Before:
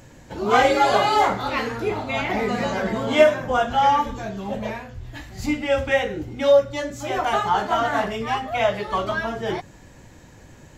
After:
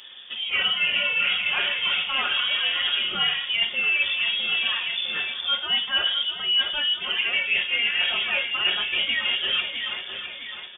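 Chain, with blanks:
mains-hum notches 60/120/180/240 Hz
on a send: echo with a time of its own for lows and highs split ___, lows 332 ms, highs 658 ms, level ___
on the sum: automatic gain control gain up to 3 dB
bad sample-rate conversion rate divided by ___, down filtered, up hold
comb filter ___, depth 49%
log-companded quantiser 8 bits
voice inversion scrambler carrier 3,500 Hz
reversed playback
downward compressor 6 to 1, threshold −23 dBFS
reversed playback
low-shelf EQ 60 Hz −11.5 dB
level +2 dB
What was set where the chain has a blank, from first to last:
920 Hz, −12 dB, 4×, 5.8 ms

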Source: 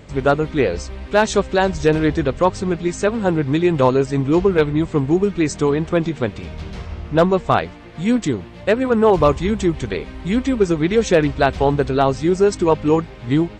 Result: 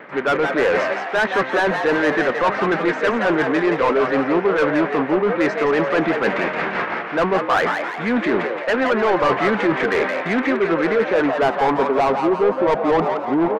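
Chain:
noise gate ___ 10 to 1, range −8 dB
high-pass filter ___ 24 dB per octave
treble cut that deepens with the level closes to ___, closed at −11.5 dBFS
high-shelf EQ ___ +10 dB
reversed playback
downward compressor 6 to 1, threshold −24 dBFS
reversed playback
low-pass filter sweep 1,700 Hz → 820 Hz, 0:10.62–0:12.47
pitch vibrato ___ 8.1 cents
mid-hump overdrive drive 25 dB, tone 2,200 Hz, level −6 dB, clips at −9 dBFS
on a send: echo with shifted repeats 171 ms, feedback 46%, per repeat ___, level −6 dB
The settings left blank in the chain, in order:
−29 dBFS, 180 Hz, 2,500 Hz, 6,500 Hz, 0.6 Hz, +130 Hz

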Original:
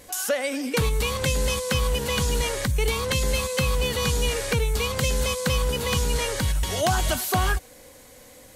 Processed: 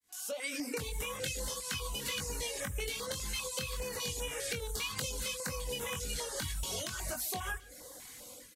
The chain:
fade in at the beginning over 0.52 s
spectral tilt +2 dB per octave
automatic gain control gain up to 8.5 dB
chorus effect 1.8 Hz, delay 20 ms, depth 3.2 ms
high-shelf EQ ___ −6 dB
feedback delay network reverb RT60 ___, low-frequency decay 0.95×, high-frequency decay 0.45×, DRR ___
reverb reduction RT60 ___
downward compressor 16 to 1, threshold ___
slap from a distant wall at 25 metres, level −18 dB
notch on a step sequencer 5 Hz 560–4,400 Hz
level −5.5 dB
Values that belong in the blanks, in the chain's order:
11,000 Hz, 1.4 s, 16 dB, 0.55 s, −27 dBFS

